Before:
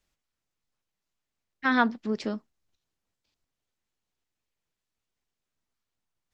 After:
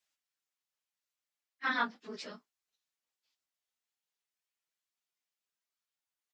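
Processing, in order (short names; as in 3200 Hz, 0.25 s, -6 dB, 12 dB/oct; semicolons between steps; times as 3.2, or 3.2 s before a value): phase scrambler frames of 50 ms; HPF 1500 Hz 6 dB/oct; doubler 21 ms -12.5 dB; gain -3 dB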